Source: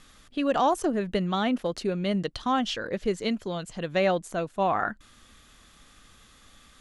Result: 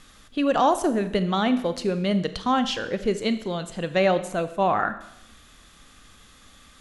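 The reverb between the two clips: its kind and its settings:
four-comb reverb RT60 0.81 s, combs from 28 ms, DRR 11 dB
level +3 dB

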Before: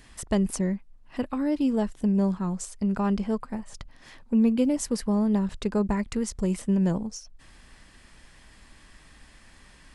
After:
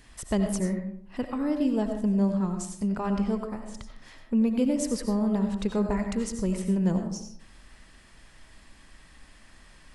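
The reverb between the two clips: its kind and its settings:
comb and all-pass reverb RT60 0.65 s, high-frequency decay 0.45×, pre-delay 50 ms, DRR 5 dB
level −2 dB

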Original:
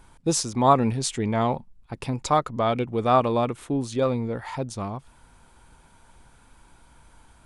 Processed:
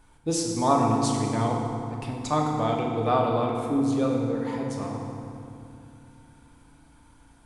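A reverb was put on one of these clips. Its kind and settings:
feedback delay network reverb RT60 2.6 s, low-frequency decay 1.45×, high-frequency decay 0.65×, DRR −1 dB
level −6 dB

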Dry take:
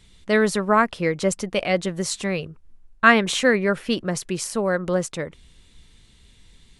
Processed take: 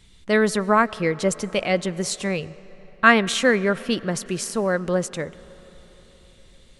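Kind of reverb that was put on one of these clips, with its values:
comb and all-pass reverb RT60 4.9 s, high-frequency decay 0.55×, pre-delay 70 ms, DRR 19.5 dB

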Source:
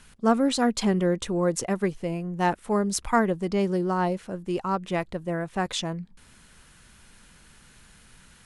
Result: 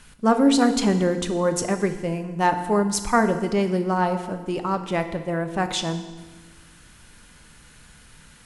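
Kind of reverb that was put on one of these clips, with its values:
feedback delay network reverb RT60 1.3 s, low-frequency decay 1.3×, high-frequency decay 0.95×, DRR 7.5 dB
level +3 dB

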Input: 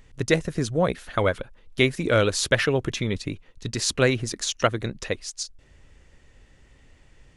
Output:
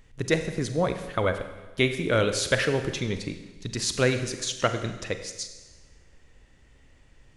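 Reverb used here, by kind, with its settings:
four-comb reverb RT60 1.2 s, combs from 32 ms, DRR 8 dB
level −3 dB

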